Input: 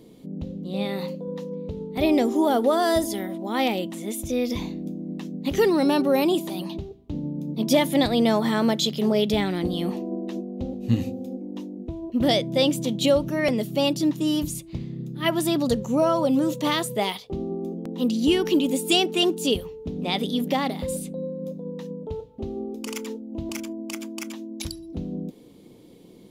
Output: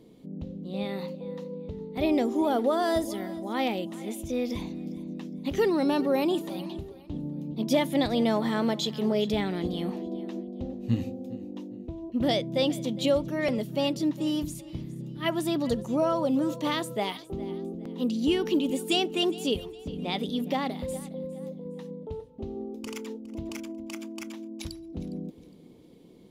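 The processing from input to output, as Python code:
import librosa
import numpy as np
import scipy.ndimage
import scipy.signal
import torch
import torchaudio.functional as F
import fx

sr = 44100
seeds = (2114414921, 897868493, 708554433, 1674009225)

p1 = fx.high_shelf(x, sr, hz=5400.0, db=-6.0)
p2 = p1 + fx.echo_feedback(p1, sr, ms=410, feedback_pct=34, wet_db=-19.0, dry=0)
y = p2 * librosa.db_to_amplitude(-4.5)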